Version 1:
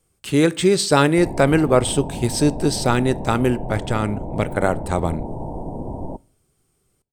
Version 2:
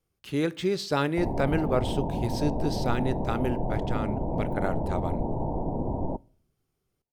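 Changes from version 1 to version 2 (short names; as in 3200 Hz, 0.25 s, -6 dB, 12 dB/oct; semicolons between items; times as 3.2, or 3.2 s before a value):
speech -10.5 dB; master: add bell 8300 Hz -15 dB 0.36 oct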